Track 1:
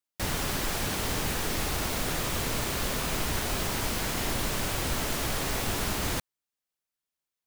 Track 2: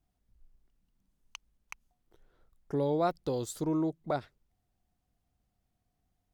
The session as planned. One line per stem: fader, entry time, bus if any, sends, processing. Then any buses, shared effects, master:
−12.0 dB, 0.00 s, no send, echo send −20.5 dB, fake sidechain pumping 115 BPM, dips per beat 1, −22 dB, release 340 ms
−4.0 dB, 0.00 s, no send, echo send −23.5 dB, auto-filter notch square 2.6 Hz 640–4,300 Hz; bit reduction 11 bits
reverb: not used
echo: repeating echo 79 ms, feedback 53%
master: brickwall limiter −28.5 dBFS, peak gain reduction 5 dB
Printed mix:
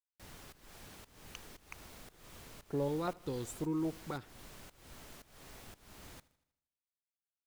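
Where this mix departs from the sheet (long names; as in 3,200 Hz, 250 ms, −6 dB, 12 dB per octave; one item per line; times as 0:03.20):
stem 1 −12.0 dB → −23.0 dB
master: missing brickwall limiter −28.5 dBFS, peak gain reduction 5 dB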